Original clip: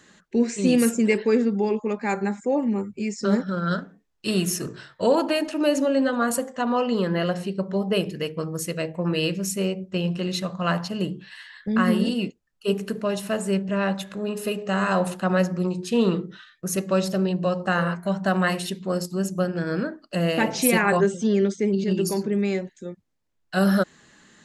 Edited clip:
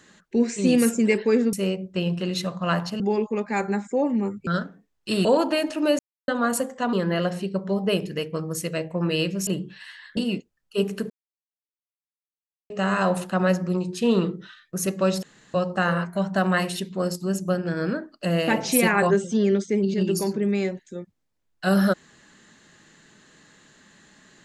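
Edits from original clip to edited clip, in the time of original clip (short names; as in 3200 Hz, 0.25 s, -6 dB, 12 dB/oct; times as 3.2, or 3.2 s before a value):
3–3.64 cut
4.42–5.03 cut
5.77–6.06 mute
6.71–6.97 cut
9.51–10.98 move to 1.53
11.68–12.07 cut
13–14.6 mute
17.13–17.44 room tone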